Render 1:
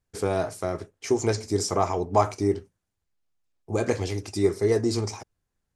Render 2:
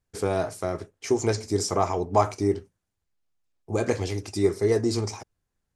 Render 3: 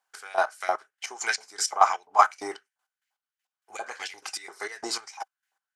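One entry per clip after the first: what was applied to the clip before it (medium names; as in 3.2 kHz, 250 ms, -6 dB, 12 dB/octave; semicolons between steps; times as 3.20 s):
no audible change
LFO high-pass saw up 2.9 Hz 830–2200 Hz; trance gate "xx...x.." 199 bpm -12 dB; small resonant body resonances 780/1500/3000 Hz, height 9 dB, ringing for 35 ms; trim +3.5 dB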